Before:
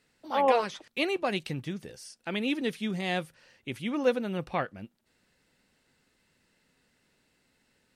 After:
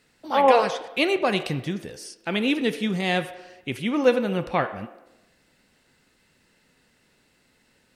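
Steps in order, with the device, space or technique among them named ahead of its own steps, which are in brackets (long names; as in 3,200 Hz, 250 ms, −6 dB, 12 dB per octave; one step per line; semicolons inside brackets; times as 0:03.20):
filtered reverb send (on a send: high-pass filter 320 Hz 24 dB per octave + low-pass filter 3,500 Hz 12 dB per octave + convolution reverb RT60 1.0 s, pre-delay 23 ms, DRR 10 dB)
on the sum: level +6.5 dB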